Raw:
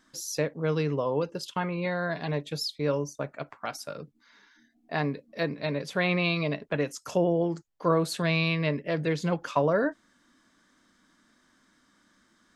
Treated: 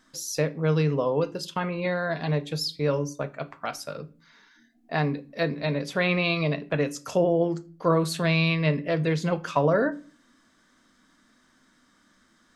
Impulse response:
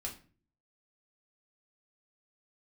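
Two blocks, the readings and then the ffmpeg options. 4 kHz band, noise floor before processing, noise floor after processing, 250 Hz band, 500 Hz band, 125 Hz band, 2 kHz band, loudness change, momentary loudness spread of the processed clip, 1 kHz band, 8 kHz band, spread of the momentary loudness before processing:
+2.5 dB, -67 dBFS, -63 dBFS, +2.5 dB, +2.5 dB, +4.0 dB, +2.0 dB, +3.0 dB, 11 LU, +2.0 dB, +2.5 dB, 10 LU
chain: -filter_complex "[0:a]asplit=2[s0][s1];[1:a]atrim=start_sample=2205[s2];[s1][s2]afir=irnorm=-1:irlink=0,volume=0.501[s3];[s0][s3]amix=inputs=2:normalize=0"

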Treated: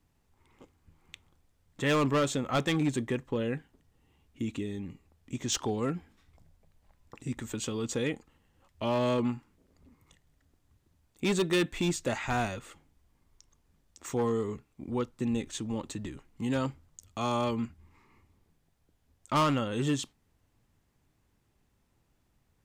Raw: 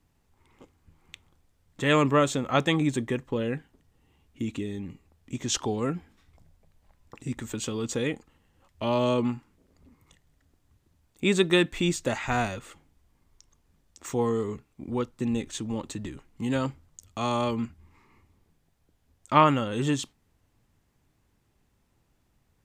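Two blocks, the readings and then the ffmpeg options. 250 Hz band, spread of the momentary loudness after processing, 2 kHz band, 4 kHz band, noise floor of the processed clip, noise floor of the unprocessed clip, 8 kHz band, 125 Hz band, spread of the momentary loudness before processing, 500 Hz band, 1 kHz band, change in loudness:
-3.0 dB, 13 LU, -4.5 dB, -4.0 dB, -73 dBFS, -70 dBFS, -2.5 dB, -3.0 dB, 16 LU, -4.0 dB, -5.5 dB, -4.0 dB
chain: -af "acontrast=27,asoftclip=type=hard:threshold=0.188,volume=0.422"

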